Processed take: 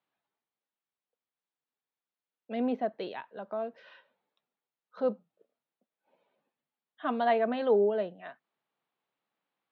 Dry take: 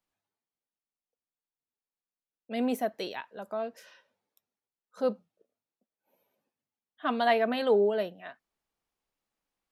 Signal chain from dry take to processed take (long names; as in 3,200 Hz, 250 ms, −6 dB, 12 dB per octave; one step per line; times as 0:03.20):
elliptic band-pass filter 130–3,900 Hz
high-shelf EQ 2,300 Hz −11.5 dB
one half of a high-frequency compander encoder only